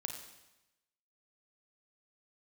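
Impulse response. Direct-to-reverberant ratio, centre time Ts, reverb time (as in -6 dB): 3.5 dB, 29 ms, 0.95 s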